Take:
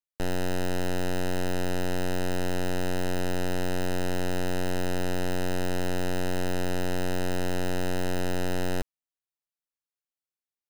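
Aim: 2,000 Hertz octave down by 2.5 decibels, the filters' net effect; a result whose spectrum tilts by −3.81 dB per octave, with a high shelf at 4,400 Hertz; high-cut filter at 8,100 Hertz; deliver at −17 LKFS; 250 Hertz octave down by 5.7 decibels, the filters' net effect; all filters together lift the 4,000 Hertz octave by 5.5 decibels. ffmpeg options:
ffmpeg -i in.wav -af "lowpass=8100,equalizer=frequency=250:width_type=o:gain=-8.5,equalizer=frequency=2000:width_type=o:gain=-6,equalizer=frequency=4000:width_type=o:gain=5.5,highshelf=frequency=4400:gain=7,volume=15dB" out.wav

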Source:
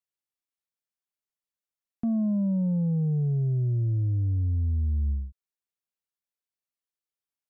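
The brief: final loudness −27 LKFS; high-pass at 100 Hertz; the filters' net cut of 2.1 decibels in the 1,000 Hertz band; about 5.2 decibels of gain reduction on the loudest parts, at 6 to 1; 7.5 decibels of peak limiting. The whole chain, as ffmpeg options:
ffmpeg -i in.wav -af "highpass=100,equalizer=frequency=1000:width_type=o:gain=-3.5,acompressor=threshold=-29dB:ratio=6,volume=8dB,alimiter=limit=-21.5dB:level=0:latency=1" out.wav

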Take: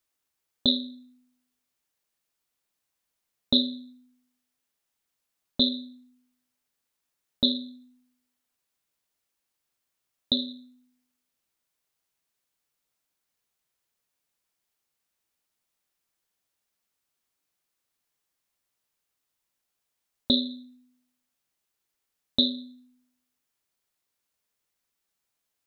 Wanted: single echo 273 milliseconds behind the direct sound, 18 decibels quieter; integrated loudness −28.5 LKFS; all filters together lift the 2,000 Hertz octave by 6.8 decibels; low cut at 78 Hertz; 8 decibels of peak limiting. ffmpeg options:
ffmpeg -i in.wav -af "highpass=78,equalizer=frequency=2000:width_type=o:gain=9,alimiter=limit=-13.5dB:level=0:latency=1,aecho=1:1:273:0.126,volume=0.5dB" out.wav

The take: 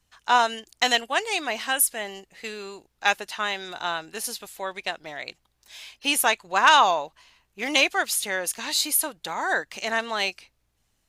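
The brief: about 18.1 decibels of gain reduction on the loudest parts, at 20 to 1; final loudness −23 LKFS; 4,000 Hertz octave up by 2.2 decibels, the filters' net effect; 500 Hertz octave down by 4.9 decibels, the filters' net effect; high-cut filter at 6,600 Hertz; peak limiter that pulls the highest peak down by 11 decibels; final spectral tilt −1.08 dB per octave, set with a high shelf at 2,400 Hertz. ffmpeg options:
ffmpeg -i in.wav -af "lowpass=6600,equalizer=frequency=500:width_type=o:gain=-6.5,highshelf=frequency=2400:gain=-6.5,equalizer=frequency=4000:width_type=o:gain=9,acompressor=threshold=-30dB:ratio=20,volume=14dB,alimiter=limit=-10.5dB:level=0:latency=1" out.wav

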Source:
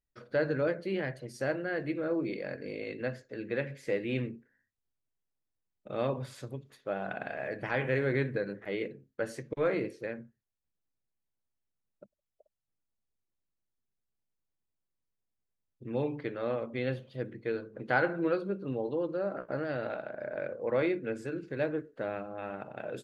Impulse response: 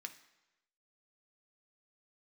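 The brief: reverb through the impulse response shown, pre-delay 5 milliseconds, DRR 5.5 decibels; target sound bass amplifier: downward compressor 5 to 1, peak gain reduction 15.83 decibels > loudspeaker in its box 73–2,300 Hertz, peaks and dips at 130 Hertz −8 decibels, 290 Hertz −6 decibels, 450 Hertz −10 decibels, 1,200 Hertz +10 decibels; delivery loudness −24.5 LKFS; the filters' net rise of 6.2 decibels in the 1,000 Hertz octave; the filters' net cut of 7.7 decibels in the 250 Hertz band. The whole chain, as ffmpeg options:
-filter_complex "[0:a]equalizer=frequency=250:width_type=o:gain=-5.5,equalizer=frequency=1000:width_type=o:gain=4.5,asplit=2[link_01][link_02];[1:a]atrim=start_sample=2205,adelay=5[link_03];[link_02][link_03]afir=irnorm=-1:irlink=0,volume=-2dB[link_04];[link_01][link_04]amix=inputs=2:normalize=0,acompressor=threshold=-37dB:ratio=5,highpass=frequency=73:width=0.5412,highpass=frequency=73:width=1.3066,equalizer=frequency=130:width_type=q:width=4:gain=-8,equalizer=frequency=290:width_type=q:width=4:gain=-6,equalizer=frequency=450:width_type=q:width=4:gain=-10,equalizer=frequency=1200:width_type=q:width=4:gain=10,lowpass=frequency=2300:width=0.5412,lowpass=frequency=2300:width=1.3066,volume=18.5dB"

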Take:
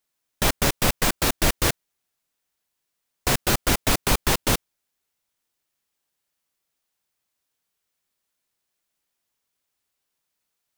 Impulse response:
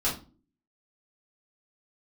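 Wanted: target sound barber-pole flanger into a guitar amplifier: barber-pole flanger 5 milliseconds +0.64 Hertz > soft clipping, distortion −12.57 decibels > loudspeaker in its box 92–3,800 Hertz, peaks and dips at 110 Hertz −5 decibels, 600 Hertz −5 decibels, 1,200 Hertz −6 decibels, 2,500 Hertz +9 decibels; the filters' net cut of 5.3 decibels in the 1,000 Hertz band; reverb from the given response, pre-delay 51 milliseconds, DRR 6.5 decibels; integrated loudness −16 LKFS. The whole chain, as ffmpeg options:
-filter_complex "[0:a]equalizer=frequency=1000:width_type=o:gain=-4,asplit=2[link_01][link_02];[1:a]atrim=start_sample=2205,adelay=51[link_03];[link_02][link_03]afir=irnorm=-1:irlink=0,volume=-15.5dB[link_04];[link_01][link_04]amix=inputs=2:normalize=0,asplit=2[link_05][link_06];[link_06]adelay=5,afreqshift=0.64[link_07];[link_05][link_07]amix=inputs=2:normalize=1,asoftclip=threshold=-21dB,highpass=92,equalizer=frequency=110:width_type=q:width=4:gain=-5,equalizer=frequency=600:width_type=q:width=4:gain=-5,equalizer=frequency=1200:width_type=q:width=4:gain=-6,equalizer=frequency=2500:width_type=q:width=4:gain=9,lowpass=frequency=3800:width=0.5412,lowpass=frequency=3800:width=1.3066,volume=14.5dB"

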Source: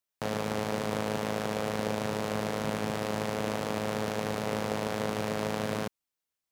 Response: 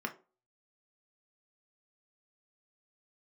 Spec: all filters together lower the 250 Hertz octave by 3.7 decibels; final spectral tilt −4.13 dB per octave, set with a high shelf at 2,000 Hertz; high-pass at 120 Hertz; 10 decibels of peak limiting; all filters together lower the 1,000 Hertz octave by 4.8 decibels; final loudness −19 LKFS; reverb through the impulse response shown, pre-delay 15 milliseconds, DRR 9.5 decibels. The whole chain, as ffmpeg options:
-filter_complex "[0:a]highpass=120,equalizer=frequency=250:width_type=o:gain=-4,equalizer=frequency=1000:width_type=o:gain=-8,highshelf=frequency=2000:gain=7,alimiter=limit=-21dB:level=0:latency=1,asplit=2[link_01][link_02];[1:a]atrim=start_sample=2205,adelay=15[link_03];[link_02][link_03]afir=irnorm=-1:irlink=0,volume=-12.5dB[link_04];[link_01][link_04]amix=inputs=2:normalize=0,volume=20dB"

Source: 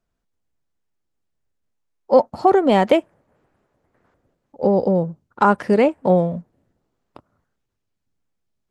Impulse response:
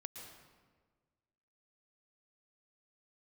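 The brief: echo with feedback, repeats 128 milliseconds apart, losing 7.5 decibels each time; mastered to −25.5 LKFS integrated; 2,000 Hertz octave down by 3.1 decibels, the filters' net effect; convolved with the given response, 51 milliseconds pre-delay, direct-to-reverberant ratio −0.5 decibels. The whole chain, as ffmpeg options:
-filter_complex "[0:a]equalizer=frequency=2000:width_type=o:gain=-4.5,aecho=1:1:128|256|384|512|640:0.422|0.177|0.0744|0.0312|0.0131,asplit=2[link_01][link_02];[1:a]atrim=start_sample=2205,adelay=51[link_03];[link_02][link_03]afir=irnorm=-1:irlink=0,volume=4dB[link_04];[link_01][link_04]amix=inputs=2:normalize=0,volume=-10.5dB"

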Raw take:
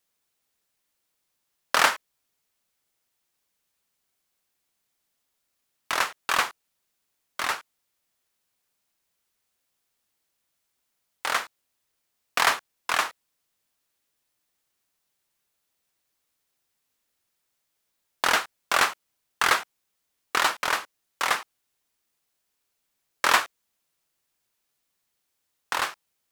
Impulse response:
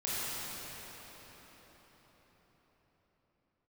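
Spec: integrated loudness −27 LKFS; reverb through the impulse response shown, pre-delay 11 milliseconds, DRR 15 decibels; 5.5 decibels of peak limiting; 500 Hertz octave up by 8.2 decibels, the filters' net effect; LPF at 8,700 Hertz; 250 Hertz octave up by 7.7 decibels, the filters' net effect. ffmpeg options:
-filter_complex "[0:a]lowpass=8700,equalizer=frequency=250:width_type=o:gain=6.5,equalizer=frequency=500:width_type=o:gain=9,alimiter=limit=-8dB:level=0:latency=1,asplit=2[link_01][link_02];[1:a]atrim=start_sample=2205,adelay=11[link_03];[link_02][link_03]afir=irnorm=-1:irlink=0,volume=-22dB[link_04];[link_01][link_04]amix=inputs=2:normalize=0,volume=-1dB"

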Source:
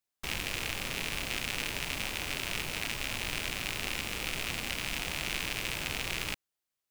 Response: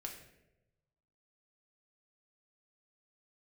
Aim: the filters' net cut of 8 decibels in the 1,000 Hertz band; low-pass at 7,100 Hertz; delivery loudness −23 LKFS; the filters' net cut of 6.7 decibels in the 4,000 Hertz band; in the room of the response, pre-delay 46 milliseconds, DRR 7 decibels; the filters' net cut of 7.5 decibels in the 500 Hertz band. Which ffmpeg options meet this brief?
-filter_complex "[0:a]lowpass=7100,equalizer=frequency=500:width_type=o:gain=-7.5,equalizer=frequency=1000:width_type=o:gain=-8,equalizer=frequency=4000:width_type=o:gain=-8.5,asplit=2[link_01][link_02];[1:a]atrim=start_sample=2205,adelay=46[link_03];[link_02][link_03]afir=irnorm=-1:irlink=0,volume=-4.5dB[link_04];[link_01][link_04]amix=inputs=2:normalize=0,volume=15dB"

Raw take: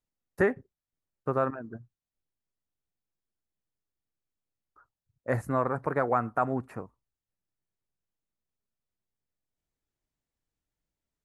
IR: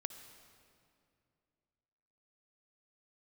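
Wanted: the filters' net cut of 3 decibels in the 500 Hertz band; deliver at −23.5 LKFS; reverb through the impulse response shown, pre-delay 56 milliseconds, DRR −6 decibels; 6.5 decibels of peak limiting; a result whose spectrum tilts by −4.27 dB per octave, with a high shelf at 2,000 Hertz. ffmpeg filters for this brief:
-filter_complex "[0:a]equalizer=frequency=500:width_type=o:gain=-3.5,highshelf=frequency=2000:gain=-4,alimiter=limit=-21dB:level=0:latency=1,asplit=2[link_01][link_02];[1:a]atrim=start_sample=2205,adelay=56[link_03];[link_02][link_03]afir=irnorm=-1:irlink=0,volume=8dB[link_04];[link_01][link_04]amix=inputs=2:normalize=0,volume=5.5dB"

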